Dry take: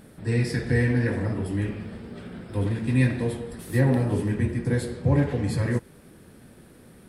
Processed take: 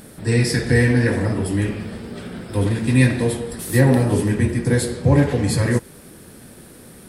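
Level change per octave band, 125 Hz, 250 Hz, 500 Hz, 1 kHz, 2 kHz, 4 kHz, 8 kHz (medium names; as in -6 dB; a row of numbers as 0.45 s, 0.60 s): +5.5 dB, +6.5 dB, +7.5 dB, +7.5 dB, +8.0 dB, +11.5 dB, +14.0 dB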